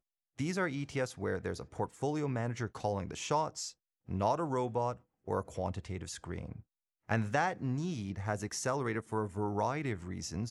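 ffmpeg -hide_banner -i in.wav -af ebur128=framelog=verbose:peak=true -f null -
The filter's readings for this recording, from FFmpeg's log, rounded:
Integrated loudness:
  I:         -35.8 LUFS
  Threshold: -46.1 LUFS
Loudness range:
  LRA:         2.0 LU
  Threshold: -56.1 LUFS
  LRA low:   -37.0 LUFS
  LRA high:  -35.1 LUFS
True peak:
  Peak:      -16.5 dBFS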